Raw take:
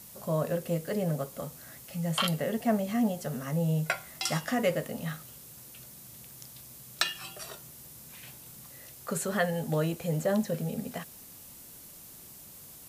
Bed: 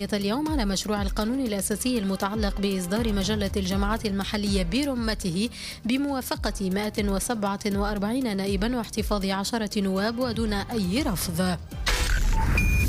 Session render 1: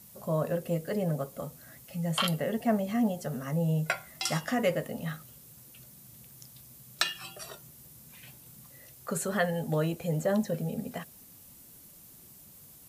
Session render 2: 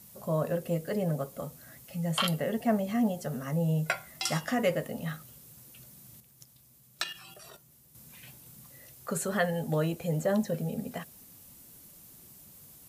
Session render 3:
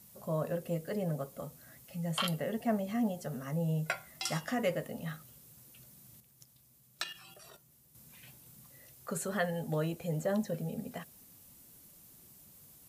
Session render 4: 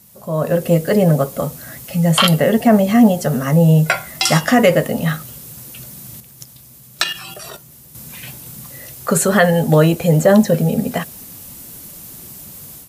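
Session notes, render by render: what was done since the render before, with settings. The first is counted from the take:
noise reduction 6 dB, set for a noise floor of -50 dBFS
6.20–7.95 s: level held to a coarse grid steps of 10 dB
trim -4.5 dB
level rider gain up to 12 dB; loudness maximiser +9.5 dB

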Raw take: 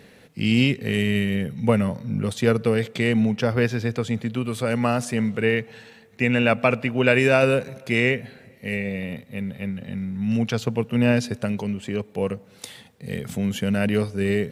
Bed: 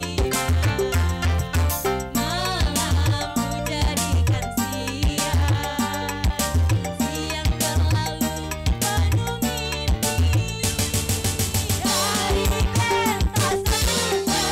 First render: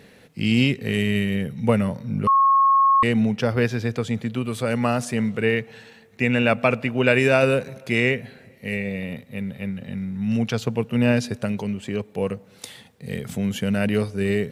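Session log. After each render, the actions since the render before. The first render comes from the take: 2.27–3.03 s: bleep 1.09 kHz -13 dBFS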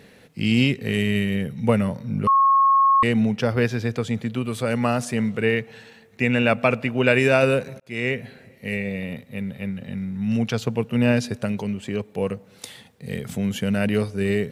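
7.80–8.22 s: fade in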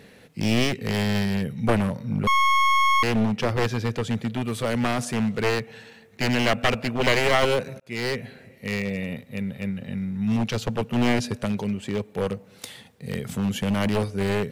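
one-sided wavefolder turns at -19.5 dBFS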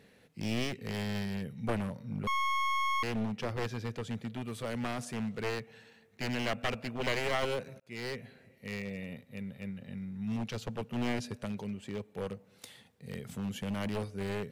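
trim -11.5 dB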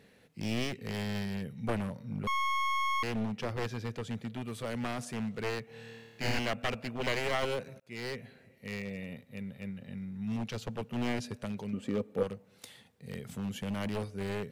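5.66–6.39 s: flutter echo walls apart 4.5 m, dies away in 1.3 s; 11.73–12.23 s: small resonant body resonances 260/490/1200 Hz, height 12 dB, ringing for 30 ms

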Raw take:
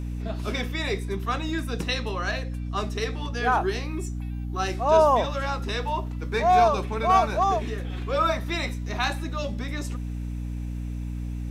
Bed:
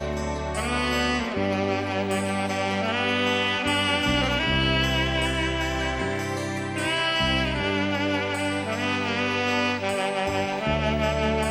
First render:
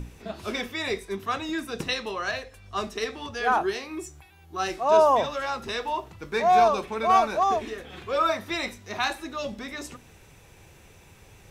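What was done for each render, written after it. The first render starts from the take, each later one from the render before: hum notches 60/120/180/240/300 Hz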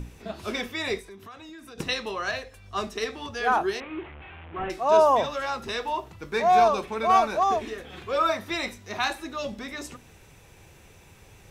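1.00–1.78 s: compression, threshold -42 dBFS; 3.80–4.70 s: one-bit delta coder 16 kbps, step -37.5 dBFS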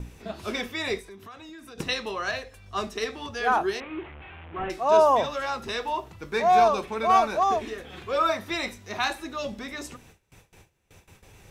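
gate with hold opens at -41 dBFS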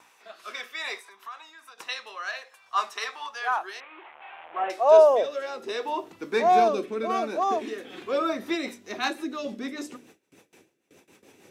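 rotary cabinet horn 0.6 Hz, later 6.7 Hz, at 8.02 s; high-pass sweep 1 kHz -> 280 Hz, 3.80–6.18 s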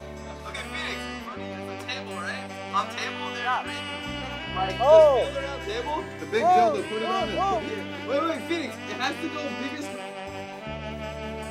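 add bed -10.5 dB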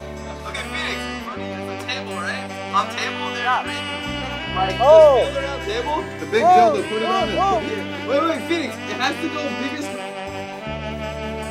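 trim +6.5 dB; peak limiter -2 dBFS, peak gain reduction 3 dB

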